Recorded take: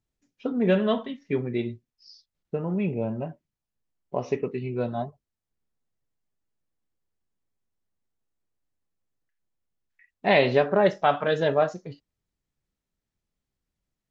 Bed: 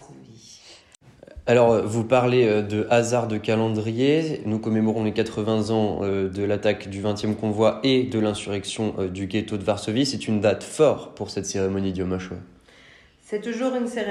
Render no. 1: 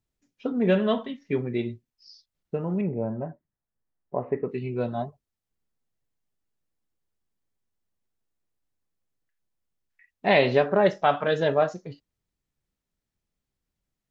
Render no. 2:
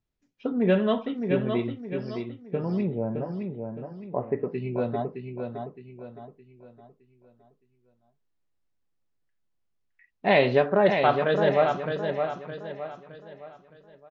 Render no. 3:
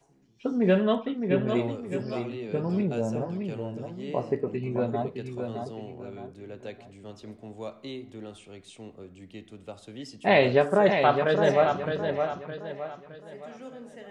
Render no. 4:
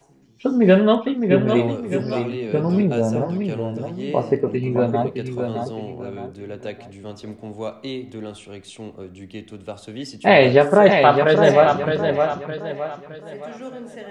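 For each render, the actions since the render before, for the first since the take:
2.81–4.49 Chebyshev low-pass 1900 Hz, order 4
air absorption 94 m; feedback echo 0.615 s, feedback 39%, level -6 dB
add bed -19 dB
gain +8.5 dB; limiter -1 dBFS, peak gain reduction 1.5 dB

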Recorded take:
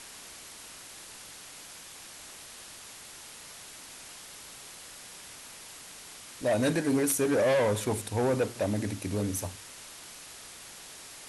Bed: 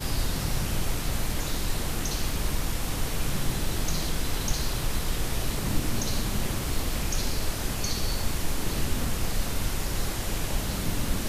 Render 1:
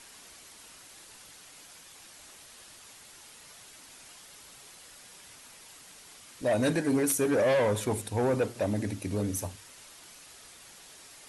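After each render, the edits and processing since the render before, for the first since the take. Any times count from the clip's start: denoiser 6 dB, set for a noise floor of -47 dBFS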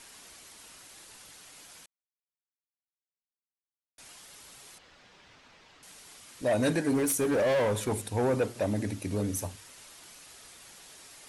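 1.86–3.98 mute; 4.78–5.83 air absorption 190 m; 6.91–7.92 hard clip -23 dBFS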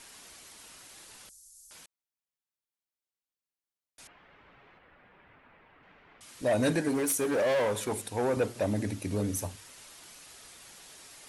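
1.29–1.71 inverse Chebyshev band-stop 200–2100 Hz, stop band 60 dB; 4.07–6.21 LPF 2300 Hz 24 dB/oct; 6.88–8.37 low shelf 170 Hz -10.5 dB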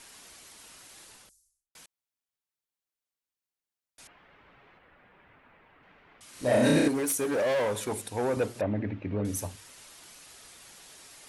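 1.03–1.75 studio fade out; 6.3–6.88 flutter echo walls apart 5.5 m, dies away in 1.1 s; 8.61–9.25 LPF 2600 Hz 24 dB/oct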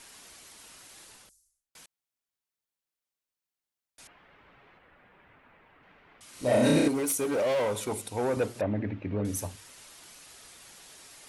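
6.36–8.22 notch 1700 Hz, Q 7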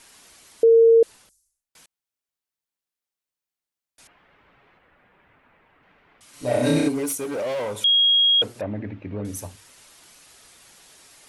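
0.63–1.03 bleep 457 Hz -10 dBFS; 6.33–7.15 comb 6.9 ms; 7.84–8.42 bleep 3280 Hz -14 dBFS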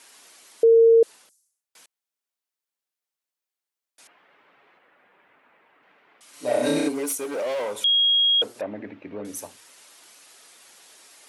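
HPF 300 Hz 12 dB/oct; dynamic EQ 2300 Hz, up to -4 dB, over -33 dBFS, Q 1.4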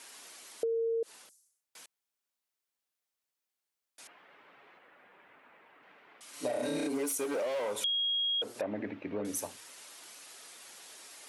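limiter -21 dBFS, peak gain reduction 10.5 dB; compressor, threshold -30 dBFS, peak gain reduction 7 dB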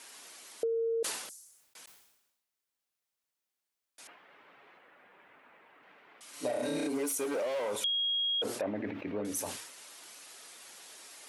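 sustainer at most 58 dB/s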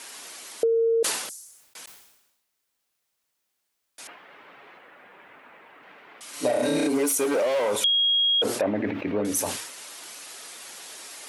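gain +9.5 dB

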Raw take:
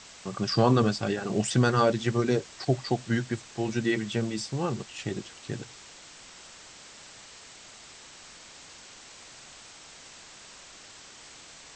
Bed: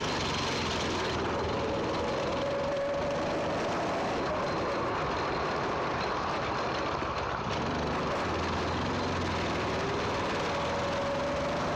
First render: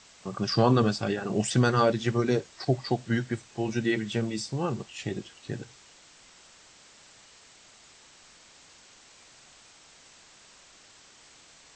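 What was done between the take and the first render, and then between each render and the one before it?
noise print and reduce 6 dB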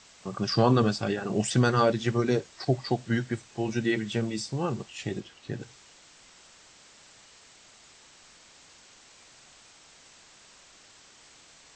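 5.2–5.61 air absorption 58 m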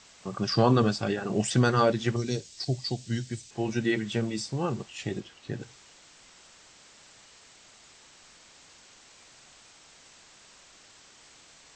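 2.16–3.51 EQ curve 100 Hz 0 dB, 1300 Hz -14 dB, 2400 Hz -4 dB, 4900 Hz +6 dB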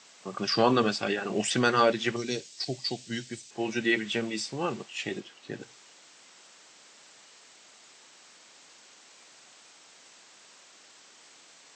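HPF 230 Hz 12 dB/oct; dynamic EQ 2500 Hz, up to +7 dB, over -49 dBFS, Q 1.1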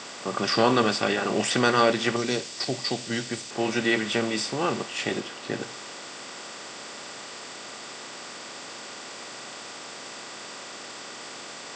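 per-bin compression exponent 0.6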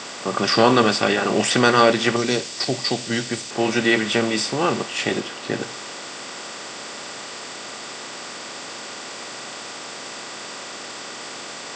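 gain +5.5 dB

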